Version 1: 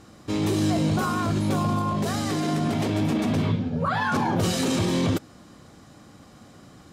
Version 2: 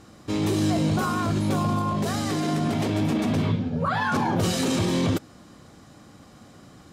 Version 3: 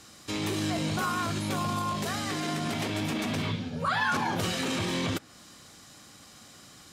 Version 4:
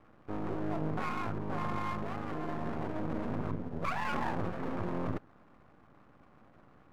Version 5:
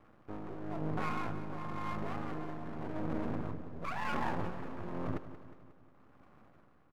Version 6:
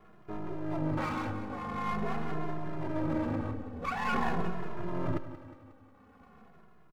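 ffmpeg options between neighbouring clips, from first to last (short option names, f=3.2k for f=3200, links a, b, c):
-af anull
-filter_complex "[0:a]tiltshelf=f=1.5k:g=-8.5,acrossover=split=210|2800[a][b][c];[c]acompressor=threshold=-40dB:ratio=6[d];[a][b][d]amix=inputs=3:normalize=0"
-af "lowpass=f=1.3k:w=0.5412,lowpass=f=1.3k:w=1.3066,aeval=exprs='max(val(0),0)':c=same"
-af "tremolo=f=0.95:d=0.57,aecho=1:1:180|360|540|720|900|1080:0.224|0.125|0.0702|0.0393|0.022|0.0123,volume=-1dB"
-filter_complex "[0:a]asplit=2[a][b];[b]adelay=2.4,afreqshift=-0.45[c];[a][c]amix=inputs=2:normalize=1,volume=7.5dB"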